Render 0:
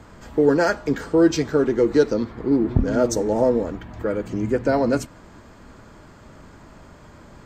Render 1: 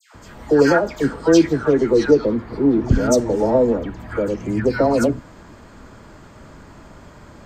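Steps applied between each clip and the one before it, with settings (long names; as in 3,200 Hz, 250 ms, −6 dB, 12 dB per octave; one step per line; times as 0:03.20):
all-pass dispersion lows, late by 147 ms, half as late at 1,400 Hz
level +3 dB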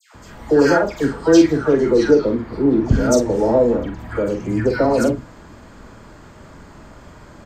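double-tracking delay 45 ms −6 dB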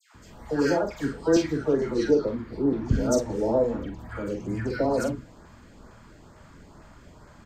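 auto-filter notch saw up 2.2 Hz 230–3,400 Hz
level −7.5 dB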